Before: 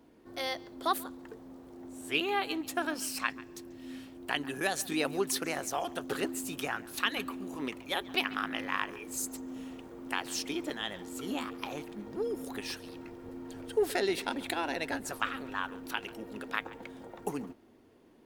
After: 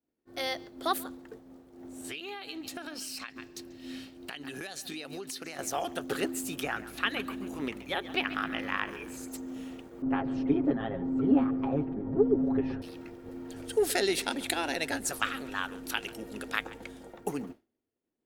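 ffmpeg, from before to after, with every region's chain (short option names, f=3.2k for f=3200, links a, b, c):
-filter_complex "[0:a]asettb=1/sr,asplit=3[a][b][c];[a]atrim=end=2.044[d];[b]atrim=start=2.04:end=5.59,asetpts=PTS-STARTPTS,afade=t=in:d=0.004:c=qsin,afade=t=out:st=3.546:d=0.004:c=qsin,equalizer=f=4k:w=1.1:g=8,bandreject=f=3.4k:w=15,acompressor=threshold=-37dB:ratio=20:attack=3.2:release=140:knee=1:detection=peak[e];[c]atrim=start=5.586[f];[d][e]acrossfade=d=0.004:c1=hsin:c2=qsin[g];[g][f]acrossfade=d=0.004:c1=qsin:c2=hsin,asettb=1/sr,asplit=3[h][i][j];[h]atrim=end=6.634[k];[i]atrim=start=6.63:end=9.28,asetpts=PTS-STARTPTS,afade=t=in:d=0.004:c=qsin,afade=t=out:st=2.646:d=0.004:c=qsin,acrossover=split=3400[l][m];[m]acompressor=threshold=-49dB:ratio=4:attack=1:release=60[n];[l][n]amix=inputs=2:normalize=0,asplit=5[o][p][q][r][s];[p]adelay=133,afreqshift=-55,volume=-16dB[t];[q]adelay=266,afreqshift=-110,volume=-22.7dB[u];[r]adelay=399,afreqshift=-165,volume=-29.5dB[v];[s]adelay=532,afreqshift=-220,volume=-36.2dB[w];[o][t][u][v][w]amix=inputs=5:normalize=0,atrim=end_sample=116865,aeval=exprs='val(0)+0.00126*(sin(2*PI*60*n/s)+sin(2*PI*2*60*n/s)/2+sin(2*PI*3*60*n/s)/3+sin(2*PI*4*60*n/s)/4+sin(2*PI*5*60*n/s)/5)':c=same[x];[j]atrim=start=9.276[y];[k][x]acrossfade=d=0.004:c1=hsin:c2=qsin[z];[z][y]acrossfade=d=0.004:c1=qsin:c2=hsin,asettb=1/sr,asplit=3[aa][ab][ac];[aa]atrim=end=10.024[ad];[ab]atrim=start=10.02:end=12.82,asetpts=PTS-STARTPTS,afade=t=in:d=0.004:c=qsin,afade=t=out:st=2.796:d=0.004:c=qsin,lowpass=1.1k,lowshelf=f=460:g=10.5,aecho=1:1:7.4:0.82,atrim=end_sample=123480[ae];[ac]atrim=start=12.816[af];[ad][ae]acrossfade=d=0.004:c1=hsin:c2=qsin[ag];[ag][af]acrossfade=d=0.004:c1=qsin:c2=hsin,asettb=1/sr,asplit=3[ah][ai][aj];[ah]atrim=end=13.564[ak];[ai]atrim=start=13.56:end=17.14,asetpts=PTS-STARTPTS,afade=t=in:d=0.004:c=qsin,afade=t=out:st=3.576:d=0.004:c=qsin,aemphasis=mode=production:type=50fm,aeval=exprs='val(0)+0.00112*(sin(2*PI*50*n/s)+sin(2*PI*2*50*n/s)/2+sin(2*PI*3*50*n/s)/3+sin(2*PI*4*50*n/s)/4+sin(2*PI*5*50*n/s)/5)':c=same,lowpass=9.4k[al];[aj]atrim=start=17.136[am];[ak][al]acrossfade=d=0.004:c1=hsin:c2=qsin[an];[an][am]acrossfade=d=0.004:c1=qsin:c2=hsin,equalizer=f=1k:w=4.8:g=-5.5,agate=range=-33dB:threshold=-44dB:ratio=3:detection=peak,volume=2dB"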